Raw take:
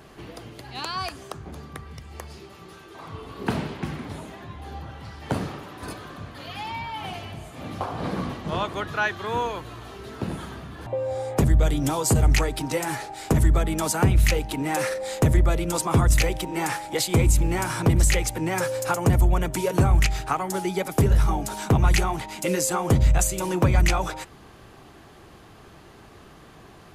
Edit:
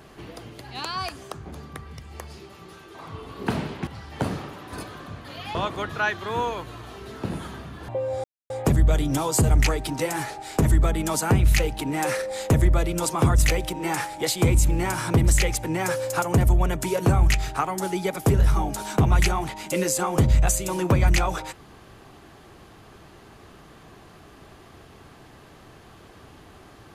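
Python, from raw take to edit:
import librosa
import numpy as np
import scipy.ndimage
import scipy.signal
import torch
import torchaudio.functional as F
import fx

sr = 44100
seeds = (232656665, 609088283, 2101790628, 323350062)

y = fx.edit(x, sr, fx.cut(start_s=3.87, length_s=1.1),
    fx.cut(start_s=6.65, length_s=1.88),
    fx.insert_silence(at_s=11.22, length_s=0.26), tone=tone)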